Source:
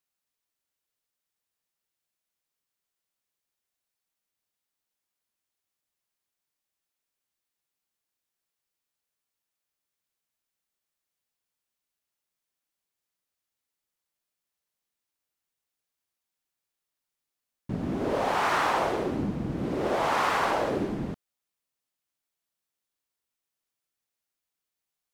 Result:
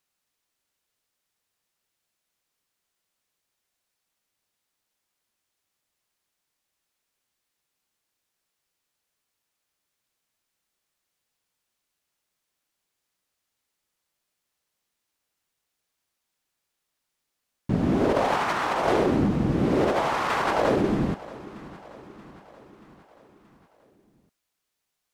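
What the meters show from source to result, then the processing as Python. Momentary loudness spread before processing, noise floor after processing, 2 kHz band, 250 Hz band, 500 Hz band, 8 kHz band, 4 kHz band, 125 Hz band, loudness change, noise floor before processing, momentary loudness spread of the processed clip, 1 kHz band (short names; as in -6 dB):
10 LU, -81 dBFS, +1.0 dB, +7.0 dB, +5.0 dB, +0.5 dB, +1.5 dB, +7.5 dB, +4.0 dB, under -85 dBFS, 18 LU, +1.5 dB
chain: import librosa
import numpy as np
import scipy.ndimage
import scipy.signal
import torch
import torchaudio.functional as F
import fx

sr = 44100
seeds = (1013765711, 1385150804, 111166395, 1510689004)

y = fx.high_shelf(x, sr, hz=12000.0, db=-6.5)
y = fx.over_compress(y, sr, threshold_db=-28.0, ratio=-0.5)
y = fx.echo_feedback(y, sr, ms=630, feedback_pct=57, wet_db=-19.0)
y = y * 10.0 ** (6.0 / 20.0)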